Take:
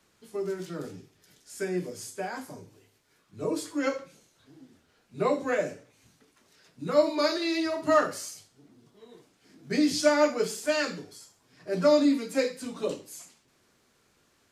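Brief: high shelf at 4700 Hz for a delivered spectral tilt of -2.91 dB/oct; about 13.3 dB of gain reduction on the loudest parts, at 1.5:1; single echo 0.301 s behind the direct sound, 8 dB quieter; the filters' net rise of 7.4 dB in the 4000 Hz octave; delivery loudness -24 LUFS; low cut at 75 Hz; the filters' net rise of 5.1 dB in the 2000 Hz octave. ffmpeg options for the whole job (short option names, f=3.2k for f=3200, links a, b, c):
-af "highpass=75,equalizer=f=2k:t=o:g=4.5,equalizer=f=4k:t=o:g=5,highshelf=f=4.7k:g=5.5,acompressor=threshold=-54dB:ratio=1.5,aecho=1:1:301:0.398,volume=14dB"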